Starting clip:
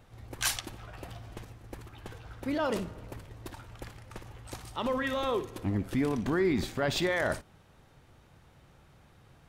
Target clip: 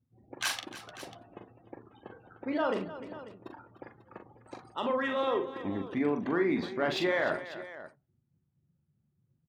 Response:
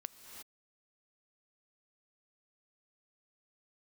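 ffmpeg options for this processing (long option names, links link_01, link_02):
-af "afftdn=noise_reduction=36:noise_floor=-47,highpass=240,equalizer=frequency=7100:width=1.5:gain=-3.5,adynamicsmooth=sensitivity=6:basefreq=5900,aecho=1:1:41|302|543:0.501|0.2|0.168,adynamicequalizer=threshold=0.00355:dfrequency=4300:dqfactor=0.7:tfrequency=4300:tqfactor=0.7:attack=5:release=100:ratio=0.375:range=3.5:mode=cutabove:tftype=highshelf"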